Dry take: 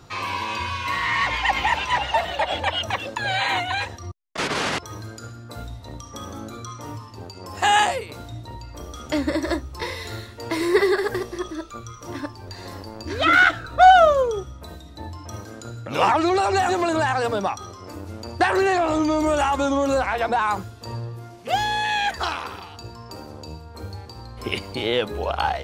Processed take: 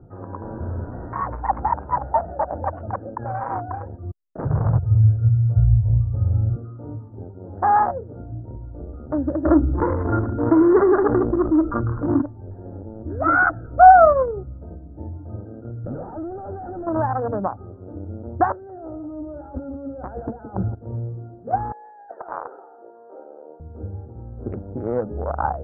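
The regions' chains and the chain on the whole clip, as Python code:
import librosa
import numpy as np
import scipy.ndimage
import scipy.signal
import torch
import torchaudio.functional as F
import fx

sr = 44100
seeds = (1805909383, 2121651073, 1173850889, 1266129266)

y = fx.chain(x, sr, fx.low_shelf(hz=470.0, db=3.0),
    fx.schmitt(flips_db=-37.5), at=(0.42, 1.13))
y = fx.chain(y, sr, fx.low_shelf_res(hz=170.0, db=13.0, q=3.0),
    fx.doppler_dist(depth_ms=0.11), at=(4.45, 6.56))
y = fx.chain(y, sr, fx.small_body(hz=(300.0, 1400.0, 3300.0), ring_ms=55, db=13),
    fx.env_flatten(amount_pct=50), at=(9.45, 12.22))
y = fx.chain(y, sr, fx.doubler(ms=12.0, db=-11),
    fx.tube_stage(drive_db=27.0, bias=0.55),
    fx.env_flatten(amount_pct=70), at=(15.84, 16.87))
y = fx.chain(y, sr, fx.over_compress(threshold_db=-32.0, ratio=-1.0),
    fx.echo_single(ms=169, db=-10.0), at=(18.52, 20.75))
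y = fx.chain(y, sr, fx.highpass(hz=460.0, slope=24),
    fx.over_compress(threshold_db=-28.0, ratio=-0.5), at=(21.72, 23.6))
y = fx.wiener(y, sr, points=41)
y = scipy.signal.sosfilt(scipy.signal.butter(8, 1400.0, 'lowpass', fs=sr, output='sos'), y)
y = fx.dynamic_eq(y, sr, hz=390.0, q=2.6, threshold_db=-40.0, ratio=4.0, max_db=-5)
y = F.gain(torch.from_numpy(y), 3.5).numpy()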